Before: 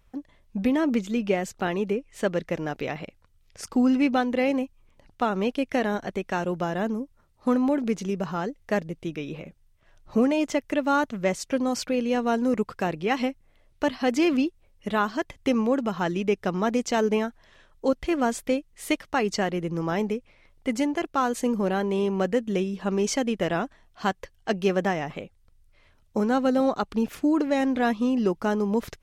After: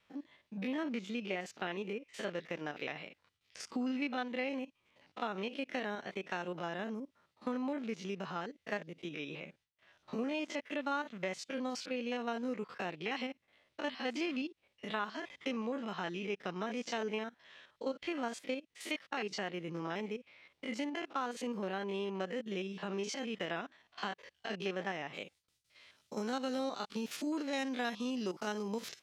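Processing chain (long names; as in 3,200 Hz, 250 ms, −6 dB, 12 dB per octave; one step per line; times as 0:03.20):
spectrum averaged block by block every 50 ms
high-pass filter 170 Hz 12 dB per octave
parametric band 3,900 Hz +12.5 dB 2.5 octaves
noise gate with hold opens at −58 dBFS
downward compressor 2 to 1, threshold −35 dBFS, peak gain reduction 11 dB
bass and treble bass −1 dB, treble −9 dB, from 0:25.13 treble +4 dB
level −5 dB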